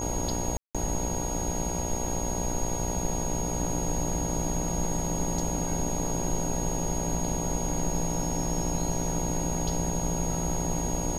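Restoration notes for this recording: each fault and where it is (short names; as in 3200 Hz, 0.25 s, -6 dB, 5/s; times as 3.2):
buzz 60 Hz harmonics 16 -34 dBFS
tone 6600 Hz -34 dBFS
0.57–0.75 gap 0.176 s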